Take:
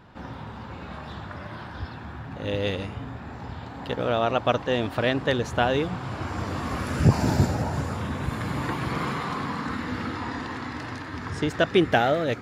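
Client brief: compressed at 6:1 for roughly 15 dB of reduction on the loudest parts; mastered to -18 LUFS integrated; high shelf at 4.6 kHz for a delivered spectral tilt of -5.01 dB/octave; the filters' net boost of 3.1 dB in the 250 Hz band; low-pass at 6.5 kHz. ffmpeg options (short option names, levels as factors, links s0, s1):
-af "lowpass=6500,equalizer=f=250:t=o:g=4,highshelf=f=4600:g=7,acompressor=threshold=0.0447:ratio=6,volume=5.31"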